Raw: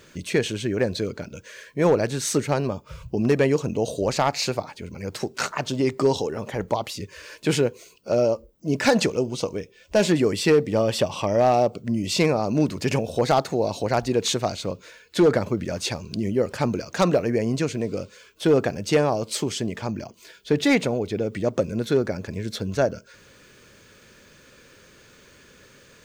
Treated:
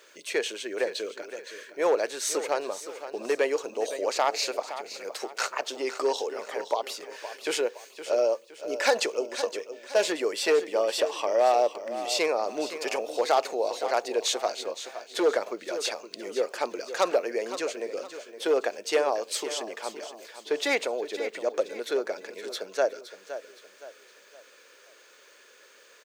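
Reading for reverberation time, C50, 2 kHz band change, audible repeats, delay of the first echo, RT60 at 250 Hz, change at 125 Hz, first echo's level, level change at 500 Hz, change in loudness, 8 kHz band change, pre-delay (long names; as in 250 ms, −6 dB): no reverb audible, no reverb audible, −2.0 dB, 3, 516 ms, no reverb audible, below −35 dB, −12.0 dB, −3.5 dB, −5.0 dB, −2.0 dB, no reverb audible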